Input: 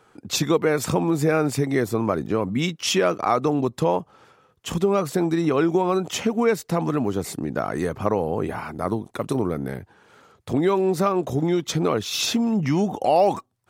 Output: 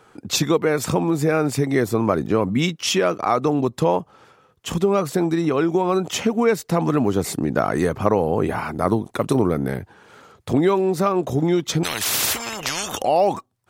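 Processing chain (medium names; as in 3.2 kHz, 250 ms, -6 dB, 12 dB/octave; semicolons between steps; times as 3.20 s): gain riding within 3 dB 0.5 s; 11.83–13.02 s: spectrum-flattening compressor 10:1; trim +2.5 dB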